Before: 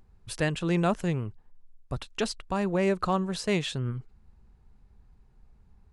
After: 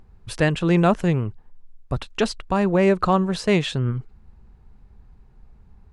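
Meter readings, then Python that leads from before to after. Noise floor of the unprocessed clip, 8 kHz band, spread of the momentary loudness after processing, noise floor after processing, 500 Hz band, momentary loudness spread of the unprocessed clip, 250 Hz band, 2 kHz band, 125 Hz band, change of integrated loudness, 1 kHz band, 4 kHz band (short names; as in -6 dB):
-60 dBFS, +2.0 dB, 13 LU, -52 dBFS, +8.0 dB, 13 LU, +8.0 dB, +7.0 dB, +8.0 dB, +7.5 dB, +7.5 dB, +5.0 dB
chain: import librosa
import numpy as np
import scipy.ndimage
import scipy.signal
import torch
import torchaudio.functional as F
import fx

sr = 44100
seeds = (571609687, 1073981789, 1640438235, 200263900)

y = fx.high_shelf(x, sr, hz=4800.0, db=-8.5)
y = F.gain(torch.from_numpy(y), 8.0).numpy()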